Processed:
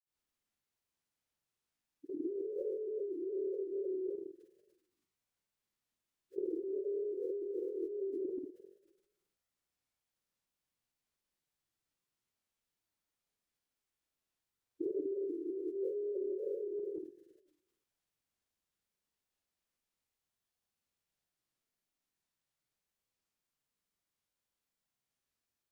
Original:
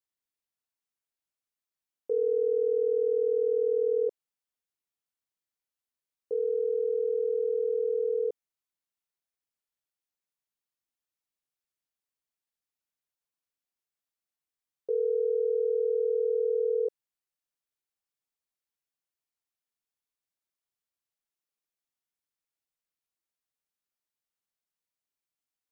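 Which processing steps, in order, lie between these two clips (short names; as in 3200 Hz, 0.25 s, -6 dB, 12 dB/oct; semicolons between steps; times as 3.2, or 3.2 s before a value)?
low shelf 450 Hz +6.5 dB; limiter -25.5 dBFS, peak gain reduction 8.5 dB; flutter echo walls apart 8.4 m, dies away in 1 s; grains 0.236 s, grains 13/s, pitch spread up and down by 3 st; formant shift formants -5 st; gain +2.5 dB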